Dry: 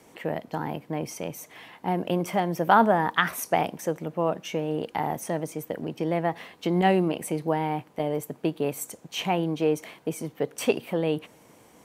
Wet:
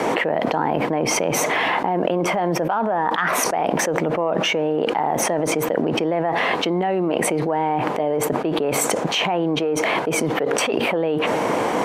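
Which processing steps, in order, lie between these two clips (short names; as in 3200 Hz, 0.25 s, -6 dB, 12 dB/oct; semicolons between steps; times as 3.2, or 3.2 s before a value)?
in parallel at -4 dB: soft clip -15 dBFS, distortion -14 dB; on the sum: band-pass 790 Hz, Q 0.58; fast leveller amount 100%; gain -7.5 dB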